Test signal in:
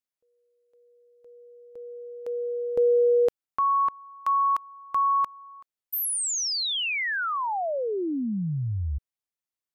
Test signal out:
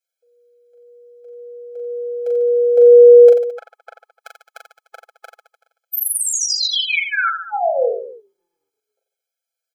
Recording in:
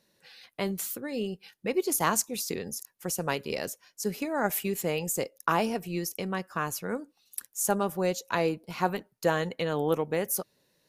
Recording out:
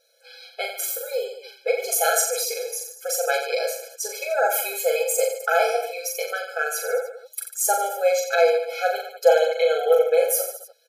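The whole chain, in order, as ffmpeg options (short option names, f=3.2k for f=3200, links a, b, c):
-af "aecho=1:1:5.9:0.78,aecho=1:1:40|88|145.6|214.7|297.7:0.631|0.398|0.251|0.158|0.1,afftfilt=real='re*eq(mod(floor(b*sr/1024/430),2),1)':imag='im*eq(mod(floor(b*sr/1024/430),2),1)':win_size=1024:overlap=0.75,volume=6.5dB"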